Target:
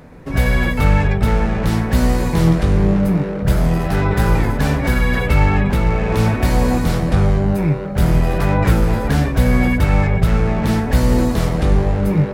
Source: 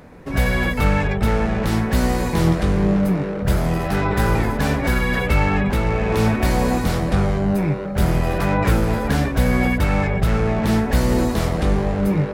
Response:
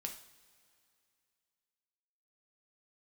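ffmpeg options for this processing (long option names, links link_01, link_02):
-filter_complex "[0:a]asplit=2[link_01][link_02];[1:a]atrim=start_sample=2205,lowshelf=frequency=260:gain=10[link_03];[link_02][link_03]afir=irnorm=-1:irlink=0,volume=-5.5dB[link_04];[link_01][link_04]amix=inputs=2:normalize=0,volume=-2dB"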